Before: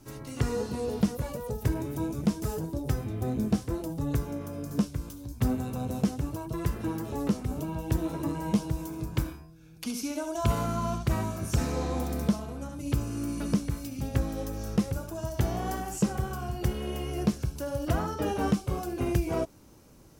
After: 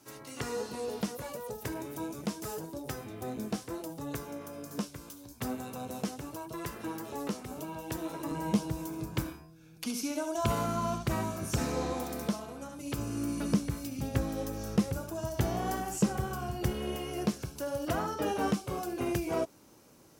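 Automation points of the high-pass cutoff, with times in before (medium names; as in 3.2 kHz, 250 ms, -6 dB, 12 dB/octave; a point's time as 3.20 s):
high-pass 6 dB/octave
570 Hz
from 8.31 s 170 Hz
from 11.93 s 400 Hz
from 12.98 s 110 Hz
from 16.96 s 280 Hz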